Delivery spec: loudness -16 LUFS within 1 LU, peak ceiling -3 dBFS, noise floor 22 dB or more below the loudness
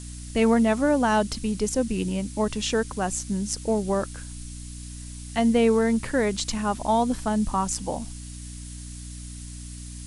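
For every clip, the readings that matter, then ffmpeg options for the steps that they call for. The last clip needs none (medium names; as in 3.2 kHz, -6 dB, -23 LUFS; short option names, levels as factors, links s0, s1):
hum 60 Hz; highest harmonic 300 Hz; hum level -37 dBFS; noise floor -38 dBFS; noise floor target -47 dBFS; loudness -24.5 LUFS; peak level -9.5 dBFS; loudness target -16.0 LUFS
-> -af "bandreject=f=60:t=h:w=6,bandreject=f=120:t=h:w=6,bandreject=f=180:t=h:w=6,bandreject=f=240:t=h:w=6,bandreject=f=300:t=h:w=6"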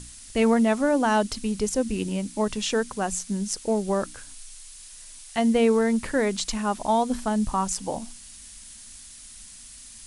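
hum not found; noise floor -45 dBFS; noise floor target -47 dBFS
-> -af "afftdn=nr=6:nf=-45"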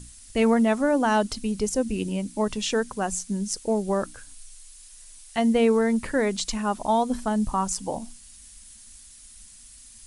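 noise floor -48 dBFS; loudness -25.0 LUFS; peak level -10.0 dBFS; loudness target -16.0 LUFS
-> -af "volume=2.82,alimiter=limit=0.708:level=0:latency=1"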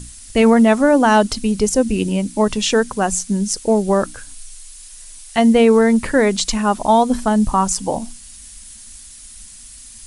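loudness -16.0 LUFS; peak level -3.0 dBFS; noise floor -39 dBFS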